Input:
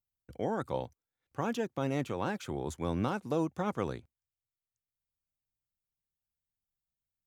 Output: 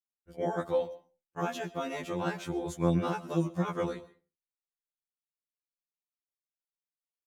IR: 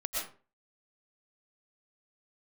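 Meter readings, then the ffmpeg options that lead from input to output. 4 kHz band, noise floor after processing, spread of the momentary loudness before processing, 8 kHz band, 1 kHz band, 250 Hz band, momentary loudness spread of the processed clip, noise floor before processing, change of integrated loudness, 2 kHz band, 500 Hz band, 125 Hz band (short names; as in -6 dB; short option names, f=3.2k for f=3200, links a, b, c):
+2.0 dB, under -85 dBFS, 7 LU, +2.0 dB, +1.0 dB, +1.5 dB, 12 LU, under -85 dBFS, +2.0 dB, +1.5 dB, +2.5 dB, +3.0 dB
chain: -filter_complex "[0:a]agate=range=-27dB:threshold=-55dB:ratio=16:detection=peak,aecho=1:1:5.7:0.61,asplit=2[a][b];[1:a]atrim=start_sample=2205,afade=t=out:st=0.41:d=0.01,atrim=end_sample=18522[c];[b][c]afir=irnorm=-1:irlink=0,volume=-19dB[d];[a][d]amix=inputs=2:normalize=0,afftfilt=real='re*2*eq(mod(b,4),0)':imag='im*2*eq(mod(b,4),0)':win_size=2048:overlap=0.75,volume=2dB"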